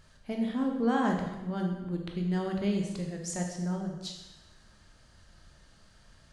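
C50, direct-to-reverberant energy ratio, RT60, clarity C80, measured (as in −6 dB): 4.0 dB, 1.0 dB, 1.1 s, 6.5 dB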